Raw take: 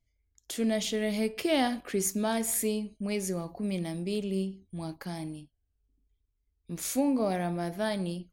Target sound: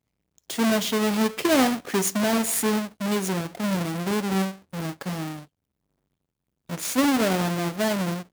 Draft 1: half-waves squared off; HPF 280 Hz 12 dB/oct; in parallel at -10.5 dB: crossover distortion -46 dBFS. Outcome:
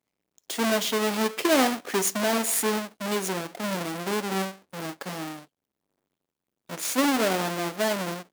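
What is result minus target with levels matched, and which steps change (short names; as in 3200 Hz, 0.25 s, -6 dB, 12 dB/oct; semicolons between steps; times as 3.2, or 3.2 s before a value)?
125 Hz band -6.0 dB
change: HPF 110 Hz 12 dB/oct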